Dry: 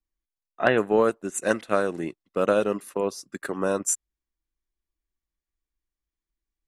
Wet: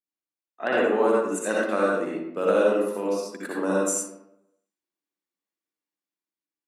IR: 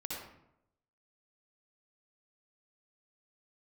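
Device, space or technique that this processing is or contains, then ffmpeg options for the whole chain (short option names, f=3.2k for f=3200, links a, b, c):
far laptop microphone: -filter_complex "[1:a]atrim=start_sample=2205[a];[0:a][a]afir=irnorm=-1:irlink=0,highpass=f=200:w=0.5412,highpass=f=200:w=1.3066,dynaudnorm=f=130:g=11:m=5dB,volume=-4.5dB"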